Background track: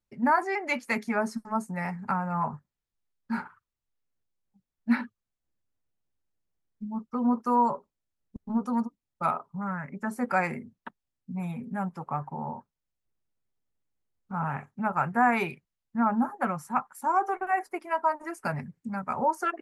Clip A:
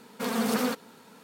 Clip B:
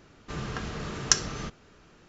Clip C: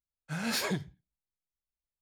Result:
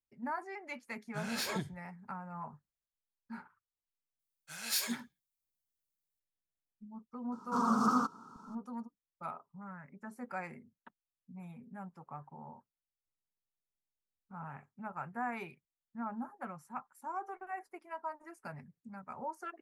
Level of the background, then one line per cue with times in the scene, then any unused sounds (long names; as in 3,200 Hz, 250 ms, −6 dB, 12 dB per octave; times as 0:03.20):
background track −15 dB
0:00.85: mix in C −5 dB
0:04.19: mix in C −11 dB + spectral tilt +4.5 dB per octave
0:07.32: mix in A −3 dB + drawn EQ curve 330 Hz 0 dB, 520 Hz −13 dB, 1,300 Hz +12 dB, 1,900 Hz −29 dB, 3,900 Hz −16 dB, 5,700 Hz −3 dB, 13,000 Hz −22 dB
not used: B